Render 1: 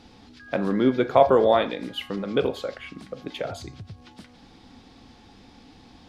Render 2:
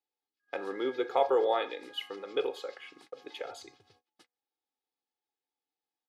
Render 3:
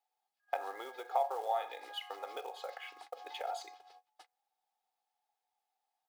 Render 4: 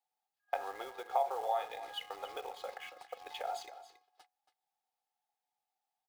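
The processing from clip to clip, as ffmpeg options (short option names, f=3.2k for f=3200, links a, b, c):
-af "agate=range=-35dB:threshold=-42dB:ratio=16:detection=peak,highpass=420,aecho=1:1:2.4:0.69,volume=-8.5dB"
-af "acompressor=threshold=-40dB:ratio=4,acrusher=bits=5:mode=log:mix=0:aa=0.000001,highpass=f=740:t=q:w=5.2"
-filter_complex "[0:a]asplit=2[a][b];[b]aeval=exprs='val(0)*gte(abs(val(0)),0.00501)':c=same,volume=-4dB[c];[a][c]amix=inputs=2:normalize=0,aecho=1:1:278:0.2,volume=-4dB"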